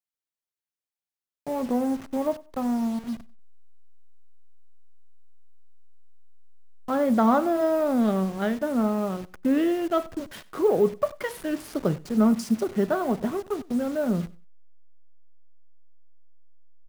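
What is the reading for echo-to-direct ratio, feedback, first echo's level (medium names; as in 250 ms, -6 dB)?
-21.0 dB, 21%, -21.0 dB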